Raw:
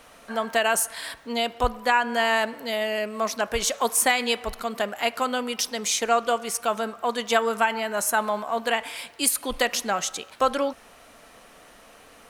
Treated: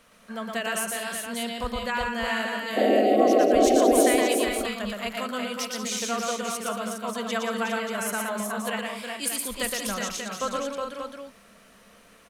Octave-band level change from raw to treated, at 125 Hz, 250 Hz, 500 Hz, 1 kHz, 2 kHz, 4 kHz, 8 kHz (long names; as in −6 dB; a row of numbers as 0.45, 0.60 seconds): can't be measured, +6.0 dB, +2.0 dB, −3.0 dB, −4.0 dB, −3.5 dB, −3.5 dB